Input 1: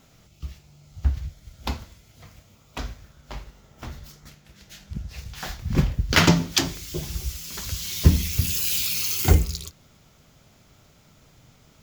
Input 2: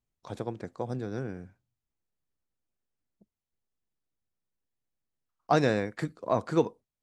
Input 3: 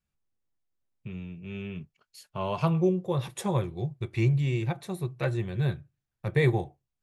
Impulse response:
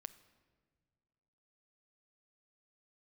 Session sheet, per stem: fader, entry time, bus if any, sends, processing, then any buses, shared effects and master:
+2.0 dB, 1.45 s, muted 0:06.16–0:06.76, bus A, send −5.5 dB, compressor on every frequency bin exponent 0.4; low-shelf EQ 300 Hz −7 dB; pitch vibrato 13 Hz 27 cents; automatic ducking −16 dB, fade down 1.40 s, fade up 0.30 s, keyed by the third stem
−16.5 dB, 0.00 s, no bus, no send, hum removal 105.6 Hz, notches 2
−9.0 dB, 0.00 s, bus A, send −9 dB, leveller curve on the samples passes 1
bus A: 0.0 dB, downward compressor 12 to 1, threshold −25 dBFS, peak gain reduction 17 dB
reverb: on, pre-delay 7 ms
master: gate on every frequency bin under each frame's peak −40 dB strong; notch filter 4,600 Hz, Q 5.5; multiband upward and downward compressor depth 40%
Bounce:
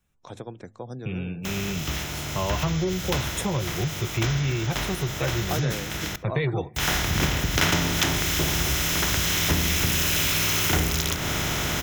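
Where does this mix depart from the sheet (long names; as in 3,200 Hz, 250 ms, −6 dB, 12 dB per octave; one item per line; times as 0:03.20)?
stem 2 −16.5 dB → −7.5 dB
stem 3 −9.0 dB → −0.5 dB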